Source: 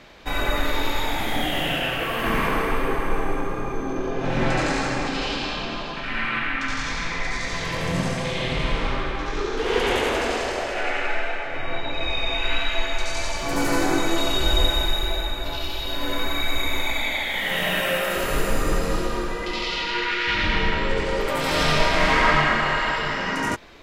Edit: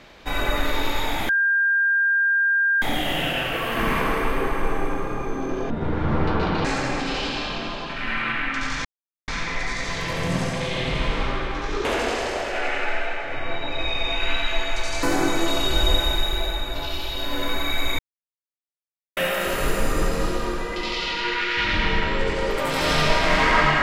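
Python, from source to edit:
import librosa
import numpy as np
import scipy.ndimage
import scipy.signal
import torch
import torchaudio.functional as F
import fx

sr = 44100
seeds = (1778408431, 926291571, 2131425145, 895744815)

y = fx.edit(x, sr, fx.insert_tone(at_s=1.29, length_s=1.53, hz=1600.0, db=-16.5),
    fx.speed_span(start_s=4.17, length_s=0.55, speed=0.58),
    fx.insert_silence(at_s=6.92, length_s=0.43),
    fx.cut(start_s=9.49, length_s=0.58),
    fx.cut(start_s=13.25, length_s=0.48),
    fx.silence(start_s=16.69, length_s=1.18), tone=tone)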